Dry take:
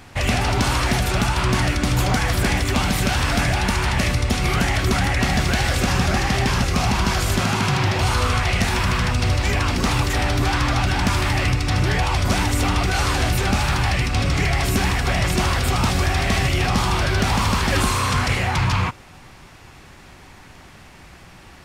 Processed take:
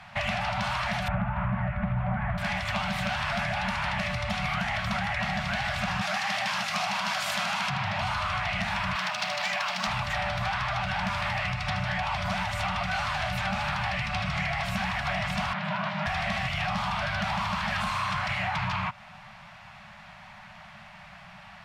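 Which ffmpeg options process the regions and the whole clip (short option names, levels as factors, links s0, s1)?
-filter_complex "[0:a]asettb=1/sr,asplit=3[s0][s1][s2];[s0]atrim=end=1.084[s3];[s1]atrim=start=1.08:end=2.38,asetpts=PTS-STARTPTS,afade=t=in:d=0.004:c=qsin,afade=t=out:st=1.296:d=0.004:c=qsin,lowpass=f=2100:w=0.5412,lowpass=f=2100:w=1.3066,lowshelf=f=430:g=11.5[s4];[s2]atrim=start=2.376[s5];[s3][s4]acrossfade=d=0.004:c1=hsin:c2=qsin[s6];[s6][s5]acrossfade=d=0.004:c1=qsin:c2=hsin,asettb=1/sr,asplit=3[s7][s8][s9];[s7]atrim=end=6.014[s10];[s8]atrim=start=6.01:end=7.7,asetpts=PTS-STARTPTS,afade=t=in:d=0.004:c=qsin,afade=t=out:st=1.686:d=0.004:c=qsin,highpass=260,highshelf=f=3700:g=10.5,acrusher=bits=9:dc=4:mix=0:aa=0.000001[s11];[s9]atrim=start=7.696[s12];[s10][s11]acrossfade=d=0.004:c1=hsin:c2=qsin[s13];[s13][s12]acrossfade=d=0.004:c1=qsin:c2=hsin,asettb=1/sr,asplit=3[s14][s15][s16];[s14]atrim=end=8.954[s17];[s15]atrim=start=8.95:end=9.87,asetpts=PTS-STARTPTS,afade=t=in:d=0.004:c=qsin,afade=t=out:st=0.916:d=0.004:c=qsin,bass=f=250:g=-6,treble=f=4000:g=11,adynamicsmooth=sensitivity=4.5:basefreq=1600,highpass=f=180:w=0.5412,highpass=f=180:w=1.3066[s18];[s16]atrim=start=9.866[s19];[s17][s18]acrossfade=d=0.004:c1=hsin:c2=qsin[s20];[s20][s19]acrossfade=d=0.004:c1=qsin:c2=hsin,asettb=1/sr,asplit=3[s21][s22][s23];[s21]atrim=end=15.534[s24];[s22]atrim=start=15.53:end=16.06,asetpts=PTS-STARTPTS,afade=t=in:d=0.004:c=qsin,afade=t=out:st=0.526:d=0.004:c=qsin,aeval=exprs='val(0)*sin(2*PI*240*n/s)':c=same,highpass=150,lowpass=3200[s25];[s23]atrim=start=16.056[s26];[s24][s25]acrossfade=d=0.004:c1=hsin:c2=qsin[s27];[s27][s26]acrossfade=d=0.004:c1=qsin:c2=hsin,acrossover=split=150 4100:gain=0.2 1 0.141[s28][s29][s30];[s28][s29][s30]amix=inputs=3:normalize=0,afftfilt=real='re*(1-between(b*sr/4096,220,560))':imag='im*(1-between(b*sr/4096,220,560))':win_size=4096:overlap=0.75,acompressor=threshold=0.0501:ratio=6"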